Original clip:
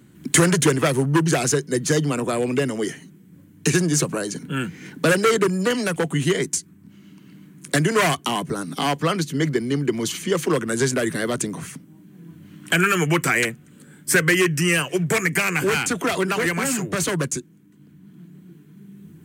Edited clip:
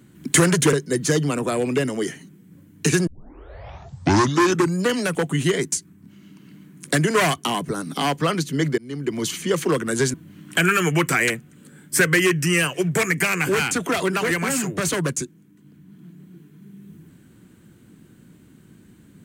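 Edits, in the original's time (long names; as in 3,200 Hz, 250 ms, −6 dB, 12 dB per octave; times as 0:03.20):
0:00.73–0:01.54: remove
0:03.88: tape start 1.75 s
0:09.59–0:10.05: fade in, from −23 dB
0:10.95–0:12.29: remove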